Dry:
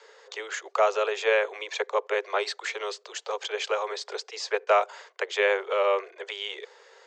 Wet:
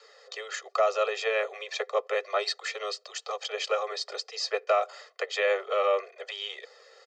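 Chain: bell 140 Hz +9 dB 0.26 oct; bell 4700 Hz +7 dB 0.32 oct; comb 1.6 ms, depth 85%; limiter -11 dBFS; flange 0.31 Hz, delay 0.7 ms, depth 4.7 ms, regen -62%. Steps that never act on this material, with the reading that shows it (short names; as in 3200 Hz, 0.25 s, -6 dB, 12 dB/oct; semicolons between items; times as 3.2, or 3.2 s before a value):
bell 140 Hz: input band starts at 320 Hz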